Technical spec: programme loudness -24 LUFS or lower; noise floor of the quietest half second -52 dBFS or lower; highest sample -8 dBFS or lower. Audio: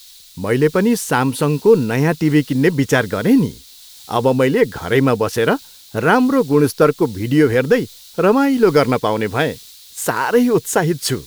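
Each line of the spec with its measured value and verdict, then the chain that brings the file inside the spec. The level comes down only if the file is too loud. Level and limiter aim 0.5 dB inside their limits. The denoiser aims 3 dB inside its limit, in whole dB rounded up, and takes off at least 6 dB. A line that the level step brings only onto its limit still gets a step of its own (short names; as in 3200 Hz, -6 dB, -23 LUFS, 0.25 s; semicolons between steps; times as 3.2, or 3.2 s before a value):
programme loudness -16.0 LUFS: fail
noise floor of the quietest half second -41 dBFS: fail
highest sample -1.5 dBFS: fail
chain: denoiser 6 dB, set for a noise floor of -41 dBFS; gain -8.5 dB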